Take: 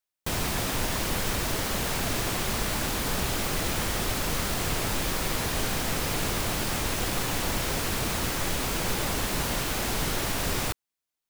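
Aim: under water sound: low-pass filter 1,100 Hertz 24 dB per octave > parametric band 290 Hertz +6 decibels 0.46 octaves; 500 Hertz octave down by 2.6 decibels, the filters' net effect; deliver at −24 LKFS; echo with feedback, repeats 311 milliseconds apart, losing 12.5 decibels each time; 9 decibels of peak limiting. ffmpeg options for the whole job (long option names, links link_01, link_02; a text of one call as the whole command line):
ffmpeg -i in.wav -af "equalizer=frequency=500:width_type=o:gain=-4.5,alimiter=limit=-23dB:level=0:latency=1,lowpass=frequency=1100:width=0.5412,lowpass=frequency=1100:width=1.3066,equalizer=frequency=290:width_type=o:width=0.46:gain=6,aecho=1:1:311|622|933:0.237|0.0569|0.0137,volume=13dB" out.wav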